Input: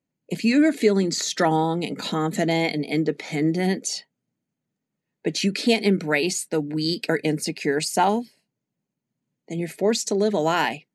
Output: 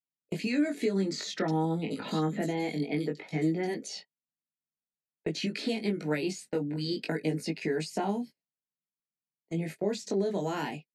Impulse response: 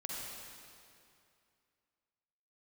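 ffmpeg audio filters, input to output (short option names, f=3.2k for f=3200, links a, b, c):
-filter_complex "[0:a]agate=range=-24dB:threshold=-33dB:ratio=16:detection=peak,highshelf=f=4.1k:g=-6,acrossover=split=380|5100[a][b][c];[a]acompressor=threshold=-27dB:ratio=4[d];[b]acompressor=threshold=-31dB:ratio=4[e];[c]acompressor=threshold=-46dB:ratio=4[f];[d][e][f]amix=inputs=3:normalize=0,flanger=delay=18.5:depth=2.4:speed=0.53,asettb=1/sr,asplit=3[g][h][i];[g]atrim=end=1.394[j];[h]atrim=start=1.39:end=3.74,asetpts=PTS-STARTPTS,afade=t=in:d=0.004:c=qsin,afade=t=out:st=2.346:d=0.004:c=qsin,acrossover=split=3500[k][l];[l]adelay=90[m];[k][m]amix=inputs=2:normalize=0,atrim=end_sample=103635[n];[i]atrim=start=3.736[o];[j][n]acrossfade=d=0.004:c1=hsin:c2=qsin[p];[p][o]acrossfade=d=0.004:c1=qsin:c2=hsin"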